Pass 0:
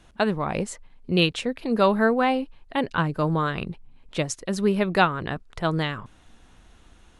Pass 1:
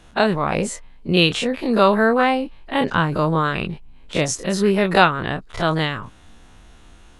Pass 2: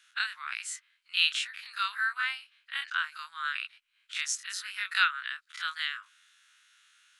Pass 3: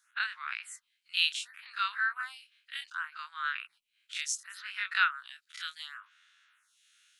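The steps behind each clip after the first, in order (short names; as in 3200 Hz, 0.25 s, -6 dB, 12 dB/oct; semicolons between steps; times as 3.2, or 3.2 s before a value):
spectral dilation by 60 ms; gain +2 dB
elliptic high-pass 1400 Hz, stop band 60 dB; gain -6 dB
photocell phaser 0.68 Hz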